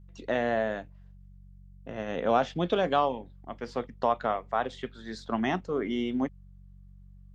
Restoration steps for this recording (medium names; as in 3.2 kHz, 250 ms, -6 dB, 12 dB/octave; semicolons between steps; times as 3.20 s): de-hum 47 Hz, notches 4